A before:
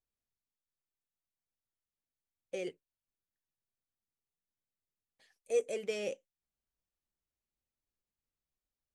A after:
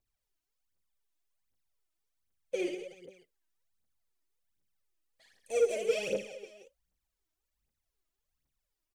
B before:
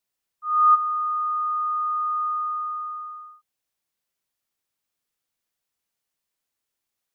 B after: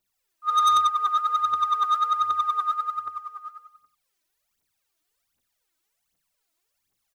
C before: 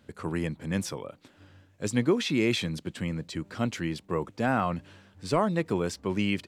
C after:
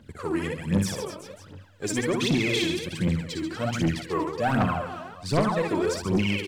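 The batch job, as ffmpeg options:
ffmpeg -i in.wav -af "aecho=1:1:60|138|239.4|371.2|542.6:0.631|0.398|0.251|0.158|0.1,aphaser=in_gain=1:out_gain=1:delay=3.3:decay=0.73:speed=1.3:type=triangular,asoftclip=type=tanh:threshold=-16dB" out.wav

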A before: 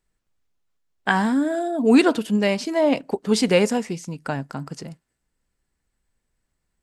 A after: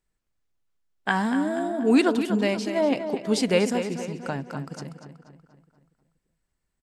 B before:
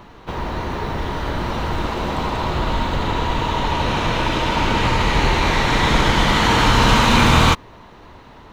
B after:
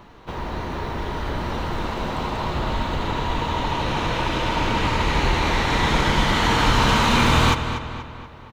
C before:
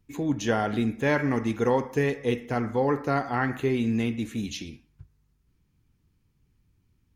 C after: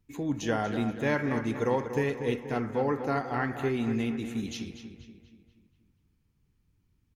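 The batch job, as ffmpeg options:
ffmpeg -i in.wav -filter_complex "[0:a]asplit=2[link_01][link_02];[link_02]adelay=240,lowpass=frequency=4400:poles=1,volume=-9dB,asplit=2[link_03][link_04];[link_04]adelay=240,lowpass=frequency=4400:poles=1,volume=0.51,asplit=2[link_05][link_06];[link_06]adelay=240,lowpass=frequency=4400:poles=1,volume=0.51,asplit=2[link_07][link_08];[link_08]adelay=240,lowpass=frequency=4400:poles=1,volume=0.51,asplit=2[link_09][link_10];[link_10]adelay=240,lowpass=frequency=4400:poles=1,volume=0.51,asplit=2[link_11][link_12];[link_12]adelay=240,lowpass=frequency=4400:poles=1,volume=0.51[link_13];[link_01][link_03][link_05][link_07][link_09][link_11][link_13]amix=inputs=7:normalize=0,volume=-4dB" out.wav

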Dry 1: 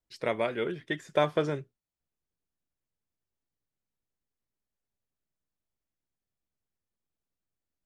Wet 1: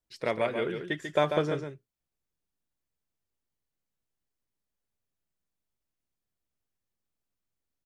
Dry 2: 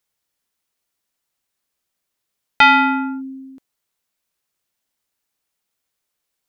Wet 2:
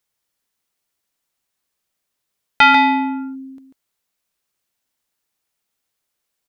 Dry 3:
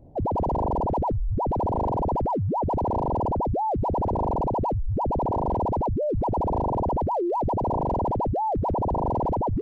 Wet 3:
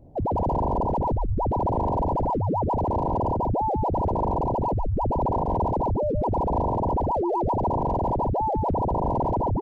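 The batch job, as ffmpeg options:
ffmpeg -i in.wav -af "aecho=1:1:142:0.447" out.wav

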